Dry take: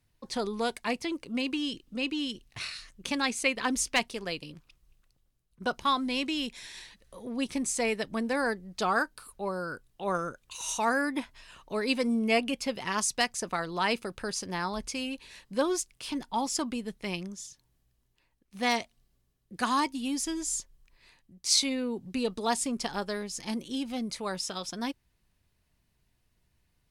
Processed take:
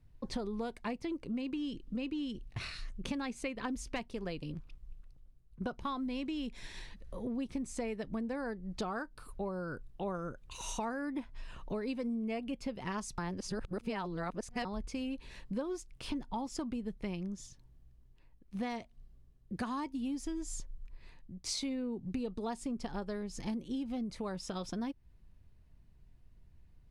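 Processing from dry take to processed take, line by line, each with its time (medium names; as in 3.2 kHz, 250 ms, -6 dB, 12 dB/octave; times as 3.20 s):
13.18–14.65 s: reverse
whole clip: tilt EQ -3 dB/octave; compression 6:1, threshold -35 dBFS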